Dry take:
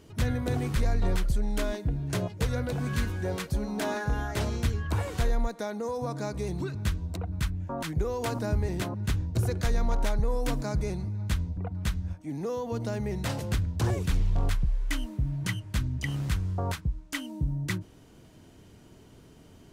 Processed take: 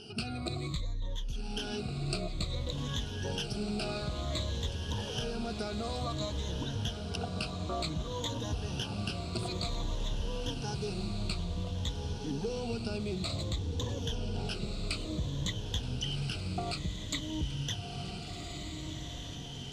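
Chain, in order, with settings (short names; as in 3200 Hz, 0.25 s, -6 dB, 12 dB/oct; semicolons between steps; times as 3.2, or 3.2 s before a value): moving spectral ripple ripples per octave 1.1, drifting -0.55 Hz, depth 21 dB; LPF 5800 Hz 12 dB/oct; resonant high shelf 2500 Hz +7 dB, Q 3; compressor 10:1, threshold -33 dBFS, peak gain reduction 20.5 dB; on a send: diffused feedback echo 1.493 s, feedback 47%, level -5 dB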